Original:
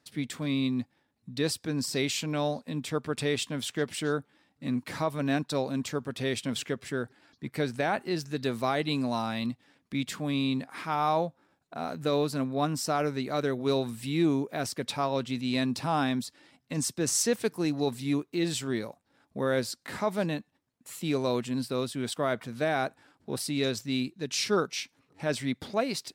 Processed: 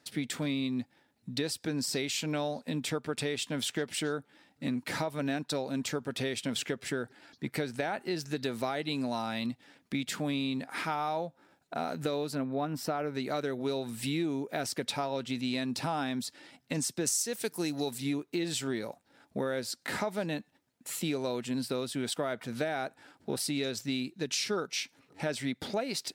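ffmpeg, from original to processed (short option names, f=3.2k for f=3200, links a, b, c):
-filter_complex "[0:a]asettb=1/sr,asplit=3[a][b][c];[a]atrim=end=12.354[d];[b]atrim=start=12.35:end=13.15,asetpts=PTS-STARTPTS,afade=t=in:d=0.004:c=qsin,afade=t=out:st=0.796:d=0.004:c=qsin,equalizer=f=7.2k:w=0.67:g=-13.5[e];[c]atrim=start=13.146[f];[d][e]acrossfade=d=0.004:c1=hsin:c2=qsin[g];[g][f]acrossfade=d=0.004:c1=qsin:c2=hsin,asettb=1/sr,asplit=3[h][i][j];[h]atrim=end=17.054[k];[i]atrim=start=17.05:end=17.98,asetpts=PTS-STARTPTS,afade=t=in:d=0.004:c=qsin,afade=t=out:st=0.926:d=0.004:c=qsin,highshelf=f=4.5k:g=11.5[l];[j]atrim=start=17.976[m];[k][l]acrossfade=d=0.004:c1=hsin:c2=qsin[n];[n][m]acrossfade=d=0.004:c1=qsin:c2=hsin,lowshelf=f=140:g=-8,bandreject=f=1.1k:w=8.2,acompressor=threshold=-35dB:ratio=6,volume=5.5dB"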